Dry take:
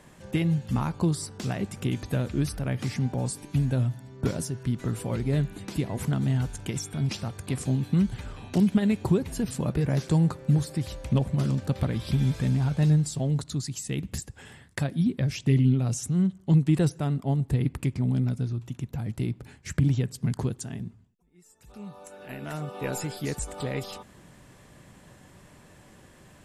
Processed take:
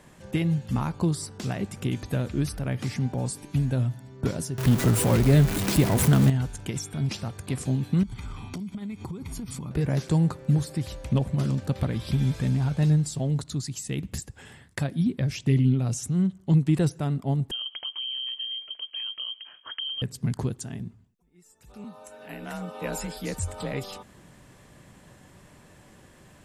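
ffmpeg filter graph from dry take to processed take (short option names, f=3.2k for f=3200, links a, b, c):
-filter_complex "[0:a]asettb=1/sr,asplit=3[a][b][c];[a]atrim=end=4.584[d];[b]atrim=start=4.58:end=6.3,asetpts=PTS-STARTPTS,afade=t=in:d=0.004:c=qsin,afade=t=out:st=1.716:d=0.004:c=qsin,aeval=exprs='val(0)+0.5*0.0251*sgn(val(0))':c=same,highshelf=f=10k:g=7.5,acontrast=62[e];[c]atrim=start=6.296[f];[d][e]acrossfade=d=0.004:c1=hsin:c2=qsin[g];[g][f]acrossfade=d=0.004:c1=qsin:c2=hsin,asettb=1/sr,asplit=3[h][i][j];[h]atrim=end=8.034[k];[i]atrim=start=8.03:end=9.71,asetpts=PTS-STARTPTS,afade=t=in:d=0.004:c=qsin,afade=t=out:st=1.676:d=0.004:c=qsin,aecho=1:1:0.9:0.64,atrim=end_sample=74088,acompressor=threshold=-31dB:ratio=16:attack=3.2:release=140:knee=1:detection=peak[l];[j]atrim=start=9.706[m];[k][l]acrossfade=d=0.004:c1=hsin:c2=qsin[n];[n][m]acrossfade=d=0.004:c1=qsin:c2=hsin,asettb=1/sr,asplit=3[o][p][q];[o]atrim=end=17.514[r];[p]atrim=start=17.51:end=20.02,asetpts=PTS-STARTPTS,afade=t=in:d=0.004:c=qsin,afade=t=out:st=2.506:d=0.004:c=qsin,bandreject=f=2.5k:w=24,acompressor=threshold=-30dB:ratio=6:attack=3.2:release=140:knee=1:detection=peak,lowpass=f=2.8k:t=q:w=0.5098,lowpass=f=2.8k:t=q:w=0.6013,lowpass=f=2.8k:t=q:w=0.9,lowpass=f=2.8k:t=q:w=2.563,afreqshift=-3300[s];[q]atrim=start=20.016[t];[r][s]acrossfade=d=0.004:c1=hsin:c2=qsin[u];[u][t]acrossfade=d=0.004:c1=qsin:c2=hsin,asettb=1/sr,asplit=3[v][w][x];[v]atrim=end=21.844[y];[w]atrim=start=21.84:end=23.73,asetpts=PTS-STARTPTS,afade=t=in:d=0.004:c=qsin,afade=t=out:st=1.886:d=0.004:c=qsin,bandreject=f=310:w=5.3,asubboost=boost=4.5:cutoff=71,afreqshift=35[z];[x]atrim=start=23.726[aa];[y][z]acrossfade=d=0.004:c1=hsin:c2=qsin[ab];[ab][aa]acrossfade=d=0.004:c1=qsin:c2=hsin"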